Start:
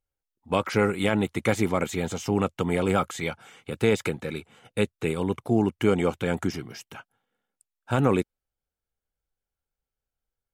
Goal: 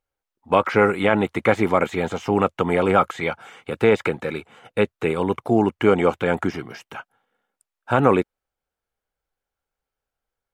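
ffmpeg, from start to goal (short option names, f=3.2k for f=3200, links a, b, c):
-filter_complex "[0:a]equalizer=f=980:w=0.33:g=10,acrossover=split=3500[a][b];[b]acompressor=threshold=-43dB:ratio=4:attack=1:release=60[c];[a][c]amix=inputs=2:normalize=0,volume=-1dB"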